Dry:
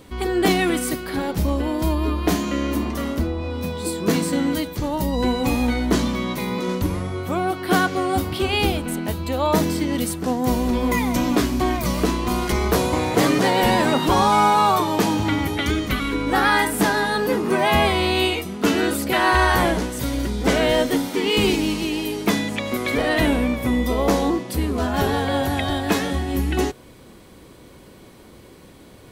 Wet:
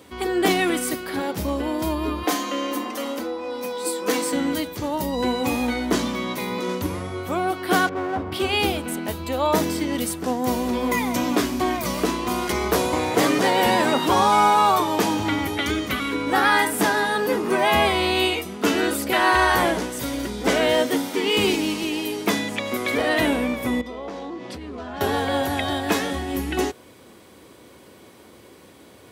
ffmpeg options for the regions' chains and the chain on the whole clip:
-filter_complex "[0:a]asettb=1/sr,asplit=3[a][b][c];[a]atrim=end=2.234[d];[b]atrim=start=2.23:end=4.33,asetpts=PTS-STARTPTS,afade=t=in:d=0.004:c=qsin,afade=t=out:st=2.096:d=0.004:c=qsin,highpass=370,aecho=1:1:3.9:0.69,atrim=end_sample=92610[e];[c]atrim=start=4.326[f];[d][e]acrossfade=d=0.004:c1=hsin:c2=qsin[g];[g][f]acrossfade=d=0.004:c1=qsin:c2=hsin,asettb=1/sr,asplit=3[h][i][j];[h]atrim=end=7.894[k];[i]atrim=start=7.89:end=8.32,asetpts=PTS-STARTPTS,afade=t=in:d=0.004:c=qsin,afade=t=out:st=0.426:d=0.004:c=qsin,lowpass=1.4k,aeval=exprs='clip(val(0),-1,0.0668)':c=same[l];[j]atrim=start=8.316[m];[k][l]acrossfade=d=0.004:c1=hsin:c2=qsin[n];[n][m]acrossfade=d=0.004:c1=qsin:c2=hsin,asettb=1/sr,asplit=3[o][p][q];[o]atrim=end=23.814[r];[p]atrim=start=23.81:end=25.01,asetpts=PTS-STARTPTS,afade=t=in:d=0.004:c=qsin,afade=t=out:st=1.196:d=0.004:c=qsin,lowpass=4.6k,acompressor=threshold=-27dB:ratio=12:attack=3.2:release=140:knee=1:detection=peak[s];[q]atrim=start=25.006[t];[r][s]acrossfade=d=0.004:c1=hsin:c2=qsin[u];[u][t]acrossfade=d=0.004:c1=qsin:c2=hsin,highpass=f=82:w=0.5412,highpass=f=82:w=1.3066,equalizer=f=140:t=o:w=1.3:g=-8,bandreject=f=4.2k:w=28"

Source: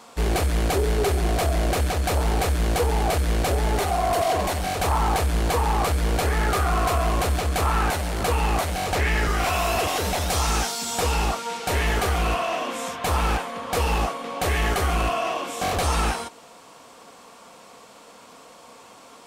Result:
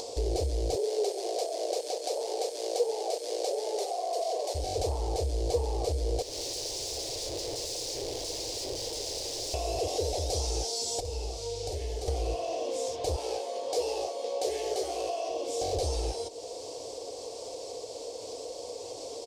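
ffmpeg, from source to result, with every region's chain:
-filter_complex "[0:a]asettb=1/sr,asplit=3[a][b][c];[a]atrim=end=0.754[d];[b]atrim=start=0.75:end=4.55,asetpts=PTS-STARTPTS,afade=t=in:d=0.004:c=qsin,afade=t=out:st=3.796:d=0.004:c=qsin,highpass=f=450:w=0.5412,highpass=f=450:w=1.3066,aeval=exprs='sgn(val(0))*max(abs(val(0))-0.002,0)':c=same[e];[c]atrim=start=4.546[f];[d][e]acrossfade=d=0.004:c1=hsin:c2=qsin[g];[g][f]acrossfade=d=0.004:c1=qsin:c2=hsin,asettb=1/sr,asplit=3[h][i][j];[h]atrim=end=6.224[k];[i]atrim=start=6.22:end=9.54,asetpts=PTS-STARTPTS,afade=t=in:d=0.004:c=qsin,afade=t=out:st=3.316:d=0.004:c=qsin,lowpass=1.3k,aeval=exprs='(mod(31.6*val(0)+1,2)-1)/31.6':c=same[l];[j]atrim=start=9.536[m];[k][l]acrossfade=d=0.004:c1=hsin:c2=qsin[n];[n][m]acrossfade=d=0.004:c1=qsin:c2=hsin,asettb=1/sr,asplit=3[o][p][q];[o]atrim=end=11.004[r];[p]atrim=start=11:end=12.08,asetpts=PTS-STARTPTS,afade=t=in:d=0.004:c=qsin,afade=t=out:st=1.076:d=0.004:c=qsin,aeval=exprs='val(0)+0.0126*(sin(2*PI*50*n/s)+sin(2*PI*2*50*n/s)/2+sin(2*PI*3*50*n/s)/3+sin(2*PI*4*50*n/s)/4+sin(2*PI*5*50*n/s)/5)':c=same,acrossover=split=110|2200[s][t][u];[s]acompressor=threshold=-37dB:ratio=4[v];[t]acompressor=threshold=-40dB:ratio=4[w];[u]acompressor=threshold=-43dB:ratio=4[x];[v][w][x]amix=inputs=3:normalize=0,asplit=2[y][z];[z]adelay=49,volume=-5dB[aa];[y][aa]amix=inputs=2:normalize=0,atrim=end_sample=47628[ab];[q]atrim=start=12.076[ac];[r][ab]acrossfade=d=0.004:c1=hsin:c2=qsin[ad];[ad][ac]acrossfade=d=0.004:c1=qsin:c2=hsin,asettb=1/sr,asplit=3[ae][af][ag];[ae]atrim=end=13.164[ah];[af]atrim=start=13.16:end=15.29,asetpts=PTS-STARTPTS,afade=t=in:d=0.004:c=qsin,afade=t=out:st=2.126:d=0.004:c=qsin,highpass=350,asplit=2[ai][aj];[aj]adelay=16,volume=-3dB[ak];[ai][ak]amix=inputs=2:normalize=0,atrim=end_sample=93933[al];[ag]atrim=start=15.286[am];[ah][al]acrossfade=d=0.004:c1=hsin:c2=qsin[an];[an][am]acrossfade=d=0.004:c1=qsin:c2=hsin,acompressor=threshold=-31dB:ratio=2.5,firequalizer=gain_entry='entry(120,0);entry(180,-26);entry(310,0);entry(470,8);entry(1300,-27);entry(2100,-16);entry(4800,5);entry(14000,-15)':delay=0.05:min_phase=1,acompressor=mode=upward:threshold=-31dB:ratio=2.5"

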